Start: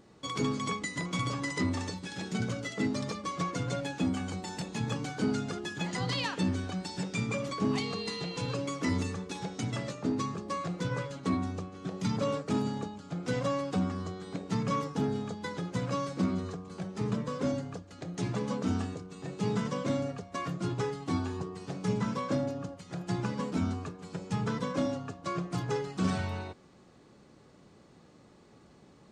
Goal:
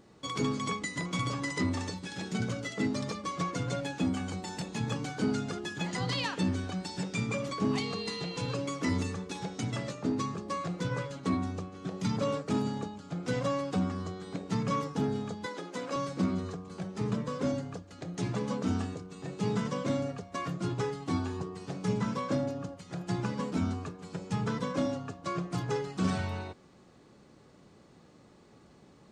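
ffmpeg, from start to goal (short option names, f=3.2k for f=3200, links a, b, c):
-filter_complex "[0:a]asettb=1/sr,asplit=3[a][b][c];[a]atrim=end=15.464[d];[b]atrim=start=15.46:end=15.96,asetpts=PTS-STARTPTS,afade=t=in:d=0.004:c=qsin,afade=t=out:st=0.496:d=0.004:c=qsin,highpass=f=250:w=0.5412,highpass=f=250:w=1.3066[e];[c]atrim=start=15.956[f];[d][e]acrossfade=d=0.004:c1=hsin:c2=qsin[g];[g][f]acrossfade=d=0.004:c1=qsin:c2=hsin"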